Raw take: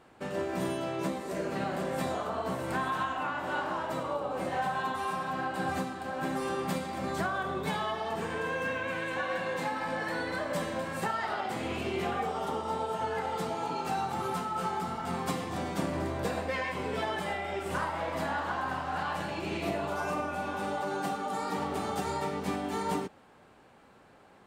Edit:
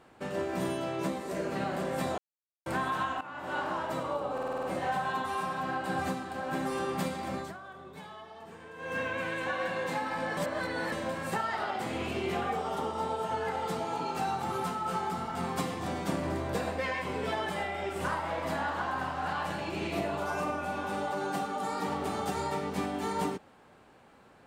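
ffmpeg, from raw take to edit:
-filter_complex "[0:a]asplit=14[s0][s1][s2][s3][s4][s5][s6][s7][s8][s9][s10][s11][s12][s13];[s0]atrim=end=2.18,asetpts=PTS-STARTPTS,afade=t=out:st=2.176:d=0.004:c=hsin[s14];[s1]atrim=start=2.18:end=2.66,asetpts=PTS-STARTPTS,volume=0[s15];[s2]atrim=start=2.66:end=3.21,asetpts=PTS-STARTPTS,afade=t=in:d=0.004:c=hsin,afade=t=out:st=0.546:d=0.004:c=hsin:silence=0.16788[s16];[s3]atrim=start=3.21:end=4.382,asetpts=PTS-STARTPTS,afade=t=in:d=0.41:silence=0.16788[s17];[s4]atrim=start=4.328:end=4.382[s18];[s5]atrim=start=4.328:end=4.382[s19];[s6]atrim=start=4.328:end=4.382[s20];[s7]atrim=start=4.328:end=4.382[s21];[s8]atrim=start=4.328:end=4.382[s22];[s9]atrim=start=4.328:end=7.23,asetpts=PTS-STARTPTS,afade=t=out:st=2.682:d=0.22:silence=0.199526[s23];[s10]atrim=start=7.23:end=8.47,asetpts=PTS-STARTPTS,volume=0.2[s24];[s11]atrim=start=8.47:end=10.072,asetpts=PTS-STARTPTS,afade=t=in:d=0.22:silence=0.199526[s25];[s12]atrim=start=10.068:end=10.622,asetpts=PTS-STARTPTS,areverse[s26];[s13]atrim=start=10.618[s27];[s14][s15][s16][s17]concat=n=4:v=0:a=1[s28];[s28][s18]acrossfade=d=0.004:c1=hsin:c2=hsin[s29];[s29][s19]acrossfade=d=0.004:c1=hsin:c2=hsin[s30];[s30][s20]acrossfade=d=0.004:c1=hsin:c2=hsin[s31];[s31][s21]acrossfade=d=0.004:c1=hsin:c2=hsin[s32];[s32][s22]acrossfade=d=0.004:c1=hsin:c2=hsin[s33];[s23][s24][s25]concat=n=3:v=0:a=1[s34];[s33][s34]acrossfade=d=0.004:c1=hsin:c2=hsin[s35];[s35][s26]acrossfade=d=0.004:c1=hsin:c2=hsin[s36];[s36][s27]acrossfade=d=0.004:c1=hsin:c2=hsin"

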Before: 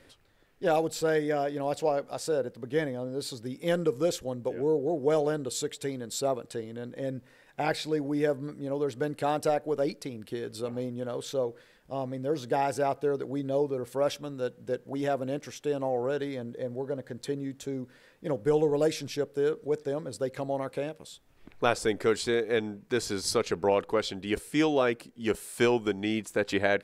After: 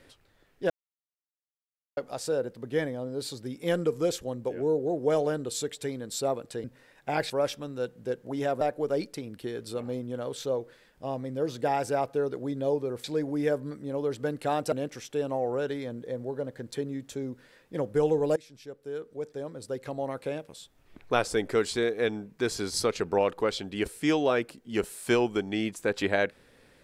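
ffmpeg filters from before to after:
-filter_complex "[0:a]asplit=9[s0][s1][s2][s3][s4][s5][s6][s7][s8];[s0]atrim=end=0.7,asetpts=PTS-STARTPTS,afade=t=out:st=0.696:d=0.004:c=hsin[s9];[s1]atrim=start=0.7:end=1.97,asetpts=PTS-STARTPTS,volume=0[s10];[s2]atrim=start=1.97:end=6.642,asetpts=PTS-STARTPTS,afade=t=in:d=0.004:c=hsin[s11];[s3]atrim=start=7.148:end=7.812[s12];[s4]atrim=start=13.918:end=15.232[s13];[s5]atrim=start=9.488:end=13.922[s14];[s6]atrim=start=7.808:end=9.492[s15];[s7]atrim=start=15.228:end=18.87,asetpts=PTS-STARTPTS,afade=t=out:st=3.638:d=0.004:c=hsin:silence=0.0944061[s16];[s8]atrim=start=18.87,asetpts=PTS-STARTPTS,afade=t=in:d=2.03:silence=0.0944061[s17];[s9][s10][s11]concat=n=3:v=0:a=1[s18];[s18][s12]acrossfade=d=0.004:c1=hsin:c2=hsin[s19];[s19][s13]acrossfade=d=0.004:c1=hsin:c2=hsin[s20];[s20][s14]acrossfade=d=0.004:c1=hsin:c2=hsin[s21];[s21][s15]acrossfade=d=0.004:c1=hsin:c2=hsin[s22];[s16][s17]concat=n=2:v=0:a=1[s23];[s22][s23]acrossfade=d=0.004:c1=hsin:c2=hsin"

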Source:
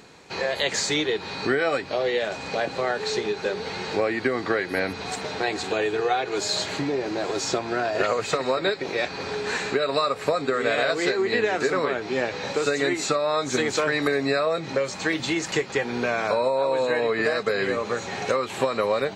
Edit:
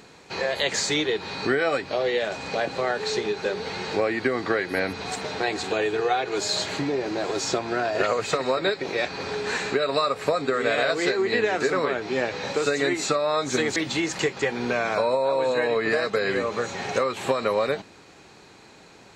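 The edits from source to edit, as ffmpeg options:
-filter_complex "[0:a]asplit=2[s0][s1];[s0]atrim=end=13.762[s2];[s1]atrim=start=15.088[s3];[s2][s3]acrossfade=d=0.004:c1=hsin:c2=hsin"

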